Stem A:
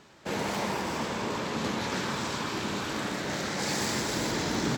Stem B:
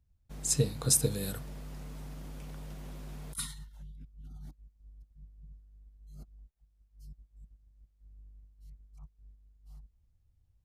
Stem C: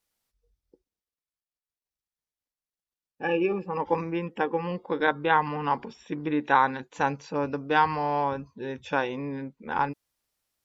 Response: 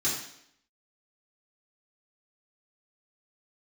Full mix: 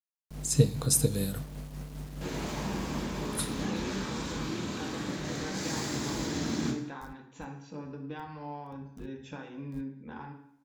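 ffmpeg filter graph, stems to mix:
-filter_complex "[0:a]bandreject=frequency=50:width_type=h:width=6,bandreject=frequency=100:width_type=h:width=6,bandreject=frequency=150:width_type=h:width=6,bandreject=frequency=200:width_type=h:width=6,adelay=1950,volume=-10.5dB,asplit=3[link_01][link_02][link_03];[link_02]volume=-8dB[link_04];[link_03]volume=-20dB[link_05];[1:a]highpass=frequency=75:poles=1,tremolo=f=5:d=0.45,aeval=exprs='val(0)*gte(abs(val(0)),0.00251)':channel_layout=same,volume=2.5dB,asplit=2[link_06][link_07];[link_07]volume=-23.5dB[link_08];[2:a]acompressor=threshold=-34dB:ratio=3,adelay=400,volume=-12.5dB,asplit=2[link_09][link_10];[link_10]volume=-8.5dB[link_11];[3:a]atrim=start_sample=2205[link_12];[link_04][link_08][link_11]amix=inputs=3:normalize=0[link_13];[link_13][link_12]afir=irnorm=-1:irlink=0[link_14];[link_05]aecho=0:1:195:1[link_15];[link_01][link_06][link_09][link_14][link_15]amix=inputs=5:normalize=0,lowshelf=frequency=270:gain=7"

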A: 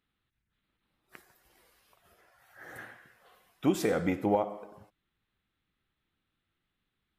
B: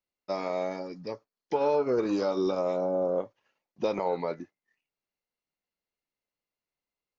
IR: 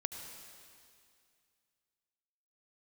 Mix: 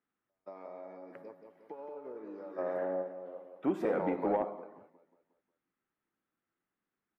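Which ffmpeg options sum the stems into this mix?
-filter_complex "[0:a]volume=-2dB,asplit=2[link_01][link_02];[1:a]acompressor=threshold=-31dB:ratio=6,volume=0.5dB,asplit=2[link_03][link_04];[link_04]volume=-12dB[link_05];[link_02]apad=whole_len=321345[link_06];[link_03][link_06]sidechaingate=range=-53dB:threshold=-57dB:ratio=16:detection=peak[link_07];[link_05]aecho=0:1:179|358|537|716|895|1074|1253:1|0.47|0.221|0.104|0.0488|0.0229|0.0108[link_08];[link_01][link_07][link_08]amix=inputs=3:normalize=0,acrossover=split=190 2000:gain=0.1 1 0.0708[link_09][link_10][link_11];[link_09][link_10][link_11]amix=inputs=3:normalize=0,asoftclip=type=tanh:threshold=-20dB"

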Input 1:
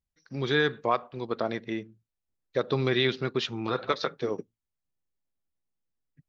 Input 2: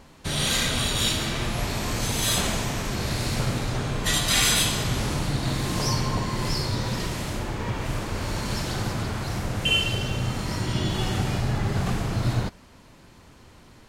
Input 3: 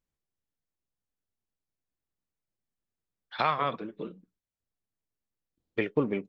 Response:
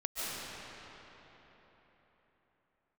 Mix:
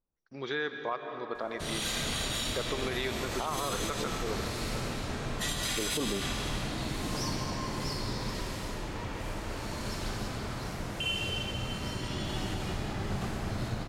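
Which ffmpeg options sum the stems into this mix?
-filter_complex "[0:a]lowshelf=frequency=310:gain=-9.5,agate=range=-24dB:threshold=-57dB:ratio=16:detection=peak,equalizer=frequency=4600:width=1.2:gain=-5.5,volume=-4dB,asplit=2[link_01][link_02];[link_02]volume=-12.5dB[link_03];[1:a]adelay=1350,volume=-11.5dB,asplit=2[link_04][link_05];[link_05]volume=-5dB[link_06];[2:a]lowpass=frequency=1200:width=0.5412,lowpass=frequency=1200:width=1.3066,volume=1.5dB[link_07];[3:a]atrim=start_sample=2205[link_08];[link_03][link_06]amix=inputs=2:normalize=0[link_09];[link_09][link_08]afir=irnorm=-1:irlink=0[link_10];[link_01][link_04][link_07][link_10]amix=inputs=4:normalize=0,equalizer=frequency=120:width_type=o:width=0.78:gain=-5,alimiter=limit=-22dB:level=0:latency=1:release=76"

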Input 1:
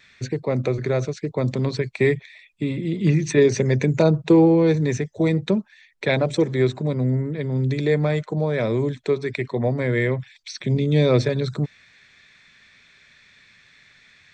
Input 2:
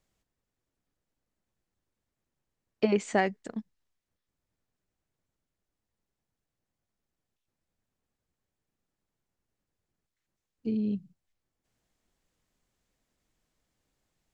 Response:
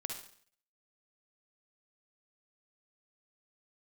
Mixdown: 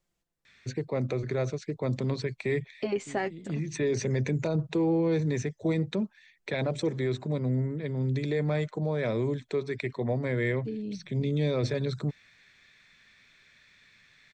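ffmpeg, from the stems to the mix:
-filter_complex "[0:a]adelay=450,volume=-6.5dB[link_01];[1:a]flanger=delay=5.7:depth=1.9:regen=34:speed=0.16:shape=triangular,volume=1.5dB,asplit=2[link_02][link_03];[link_03]apad=whole_len=651870[link_04];[link_01][link_04]sidechaincompress=threshold=-40dB:ratio=10:attack=41:release=562[link_05];[link_05][link_02]amix=inputs=2:normalize=0,alimiter=limit=-20dB:level=0:latency=1:release=14"

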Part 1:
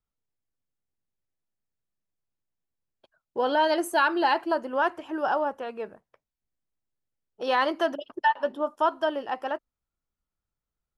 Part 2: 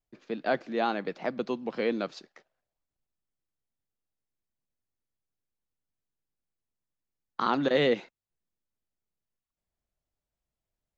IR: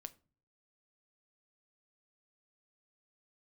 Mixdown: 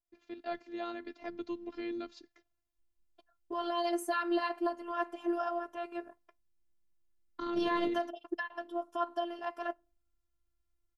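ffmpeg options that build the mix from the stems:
-filter_complex "[0:a]alimiter=limit=-22dB:level=0:latency=1:release=298,adelay=150,volume=-0.5dB,asplit=2[link_01][link_02];[link_02]volume=-8.5dB[link_03];[1:a]asubboost=boost=10:cutoff=230,acompressor=threshold=-24dB:ratio=2,volume=-6dB[link_04];[2:a]atrim=start_sample=2205[link_05];[link_03][link_05]afir=irnorm=-1:irlink=0[link_06];[link_01][link_04][link_06]amix=inputs=3:normalize=0,afftfilt=real='hypot(re,im)*cos(PI*b)':imag='0':win_size=512:overlap=0.75"

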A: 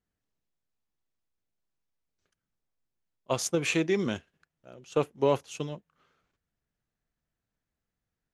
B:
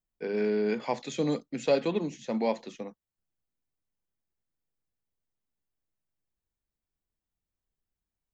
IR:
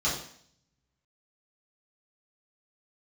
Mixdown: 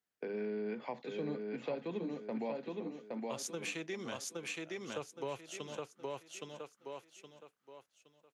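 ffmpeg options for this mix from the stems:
-filter_complex "[0:a]highpass=frequency=730:poles=1,volume=-0.5dB,asplit=2[link_01][link_02];[link_02]volume=-4dB[link_03];[1:a]agate=range=-30dB:threshold=-43dB:ratio=16:detection=peak,acrossover=split=4200[link_04][link_05];[link_05]acompressor=threshold=-52dB:ratio=4:attack=1:release=60[link_06];[link_04][link_06]amix=inputs=2:normalize=0,acrossover=split=170 3900:gain=0.0794 1 0.2[link_07][link_08][link_09];[link_07][link_08][link_09]amix=inputs=3:normalize=0,volume=0dB,asplit=2[link_10][link_11];[link_11]volume=-5dB[link_12];[link_03][link_12]amix=inputs=2:normalize=0,aecho=0:1:818|1636|2454|3272:1|0.29|0.0841|0.0244[link_13];[link_01][link_10][link_13]amix=inputs=3:normalize=0,acrossover=split=150[link_14][link_15];[link_15]acompressor=threshold=-41dB:ratio=3[link_16];[link_14][link_16]amix=inputs=2:normalize=0"

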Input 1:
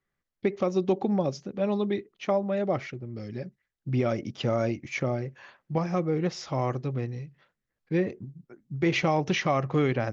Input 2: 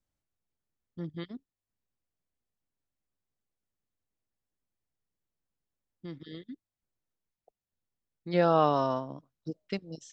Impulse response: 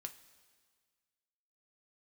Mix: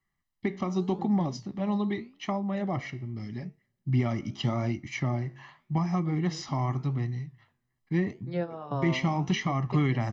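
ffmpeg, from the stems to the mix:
-filter_complex "[0:a]aecho=1:1:1:0.83,volume=1.5dB,asplit=3[link_01][link_02][link_03];[link_02]volume=-16dB[link_04];[1:a]highshelf=frequency=3800:gain=-12,volume=-1dB,asplit=2[link_05][link_06];[link_06]volume=-8.5dB[link_07];[link_03]apad=whole_len=446578[link_08];[link_05][link_08]sidechaingate=range=-33dB:threshold=-42dB:ratio=16:detection=peak[link_09];[2:a]atrim=start_sample=2205[link_10];[link_04][link_07]amix=inputs=2:normalize=0[link_11];[link_11][link_10]afir=irnorm=-1:irlink=0[link_12];[link_01][link_09][link_12]amix=inputs=3:normalize=0,acrossover=split=390[link_13][link_14];[link_14]acompressor=threshold=-27dB:ratio=3[link_15];[link_13][link_15]amix=inputs=2:normalize=0,flanger=delay=9.9:depth=8.8:regen=-77:speed=0.84:shape=sinusoidal"

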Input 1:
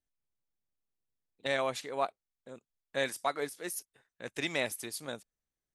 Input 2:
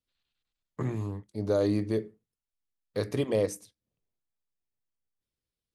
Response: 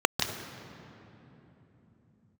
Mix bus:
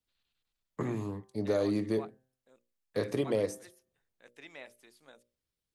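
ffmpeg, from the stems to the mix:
-filter_complex "[0:a]highpass=frequency=300:poles=1,bandreject=frequency=60:width_type=h:width=6,bandreject=frequency=120:width_type=h:width=6,bandreject=frequency=180:width_type=h:width=6,bandreject=frequency=240:width_type=h:width=6,bandreject=frequency=300:width_type=h:width=6,bandreject=frequency=360:width_type=h:width=6,bandreject=frequency=420:width_type=h:width=6,bandreject=frequency=480:width_type=h:width=6,bandreject=frequency=540:width_type=h:width=6,bandreject=frequency=600:width_type=h:width=6,acrossover=split=3300[link_01][link_02];[link_02]acompressor=threshold=-50dB:ratio=4:attack=1:release=60[link_03];[link_01][link_03]amix=inputs=2:normalize=0,volume=-14dB[link_04];[1:a]bandreject=frequency=129.3:width_type=h:width=4,bandreject=frequency=258.6:width_type=h:width=4,bandreject=frequency=387.9:width_type=h:width=4,bandreject=frequency=517.2:width_type=h:width=4,bandreject=frequency=646.5:width_type=h:width=4,bandreject=frequency=775.8:width_type=h:width=4,bandreject=frequency=905.1:width_type=h:width=4,bandreject=frequency=1034.4:width_type=h:width=4,bandreject=frequency=1163.7:width_type=h:width=4,bandreject=frequency=1293:width_type=h:width=4,bandreject=frequency=1422.3:width_type=h:width=4,bandreject=frequency=1551.6:width_type=h:width=4,bandreject=frequency=1680.9:width_type=h:width=4,bandreject=frequency=1810.2:width_type=h:width=4,acrossover=split=150|1500[link_05][link_06][link_07];[link_05]acompressor=threshold=-47dB:ratio=4[link_08];[link_06]acompressor=threshold=-27dB:ratio=4[link_09];[link_07]acompressor=threshold=-46dB:ratio=4[link_10];[link_08][link_09][link_10]amix=inputs=3:normalize=0,volume=1dB[link_11];[link_04][link_11]amix=inputs=2:normalize=0"

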